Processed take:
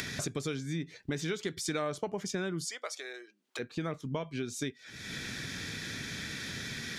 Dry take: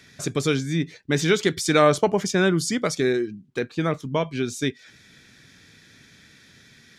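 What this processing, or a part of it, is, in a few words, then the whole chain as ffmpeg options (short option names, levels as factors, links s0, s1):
upward and downward compression: -filter_complex "[0:a]acompressor=mode=upward:threshold=0.0501:ratio=2.5,acompressor=threshold=0.02:ratio=4,asplit=3[s0][s1][s2];[s0]afade=t=out:st=2.64:d=0.02[s3];[s1]highpass=f=560:w=0.5412,highpass=f=560:w=1.3066,afade=t=in:st=2.64:d=0.02,afade=t=out:st=3.58:d=0.02[s4];[s2]afade=t=in:st=3.58:d=0.02[s5];[s3][s4][s5]amix=inputs=3:normalize=0"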